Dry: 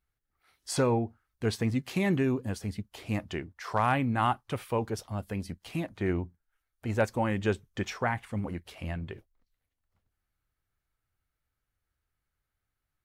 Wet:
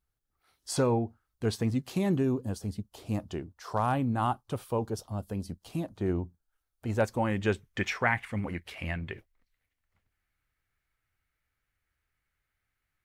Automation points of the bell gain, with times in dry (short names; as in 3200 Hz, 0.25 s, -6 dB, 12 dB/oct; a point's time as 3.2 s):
bell 2100 Hz 0.97 oct
1.64 s -6 dB
2.22 s -13 dB
6.08 s -13 dB
7.28 s -1.5 dB
7.81 s +9 dB